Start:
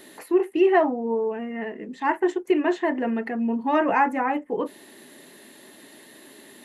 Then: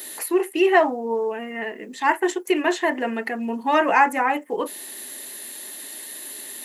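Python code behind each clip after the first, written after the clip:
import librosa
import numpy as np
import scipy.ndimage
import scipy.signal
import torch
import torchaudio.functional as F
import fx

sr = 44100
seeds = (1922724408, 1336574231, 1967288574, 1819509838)

y = fx.riaa(x, sr, side='recording')
y = y * 10.0 ** (4.0 / 20.0)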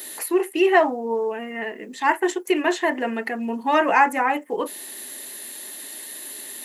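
y = x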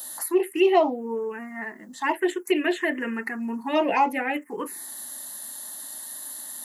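y = fx.env_phaser(x, sr, low_hz=350.0, high_hz=1700.0, full_db=-13.5)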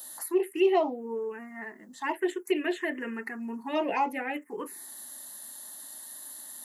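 y = fx.peak_eq(x, sr, hz=410.0, db=4.5, octaves=0.28)
y = y * 10.0 ** (-6.5 / 20.0)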